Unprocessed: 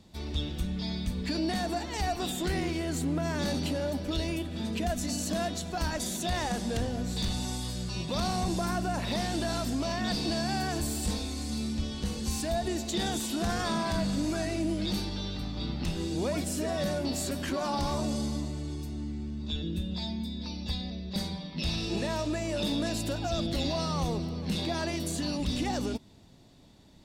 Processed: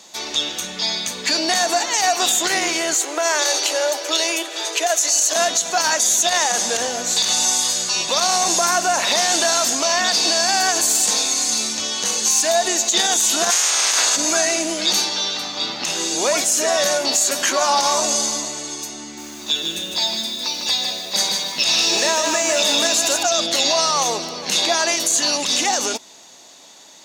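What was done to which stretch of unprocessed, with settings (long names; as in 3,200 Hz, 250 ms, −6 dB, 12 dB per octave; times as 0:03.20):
0:02.94–0:05.36: Butterworth high-pass 310 Hz 72 dB per octave
0:13.50–0:14.15: ceiling on every frequency bin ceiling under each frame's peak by 29 dB
0:19.02–0:23.23: feedback echo at a low word length 153 ms, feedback 35%, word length 9 bits, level −5 dB
whole clip: high-pass filter 710 Hz 12 dB per octave; parametric band 6,500 Hz +14 dB 0.31 octaves; boost into a limiter +24 dB; level −6.5 dB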